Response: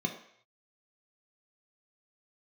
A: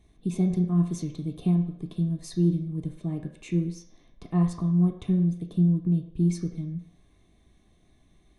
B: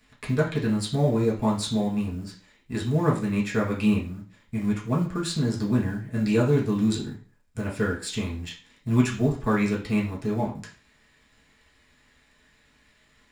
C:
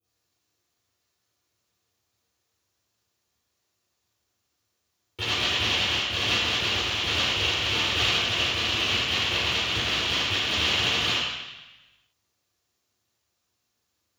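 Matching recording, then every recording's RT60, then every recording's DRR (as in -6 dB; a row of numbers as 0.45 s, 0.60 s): A; 0.65 s, 0.45 s, 1.0 s; 2.5 dB, -4.5 dB, -16.5 dB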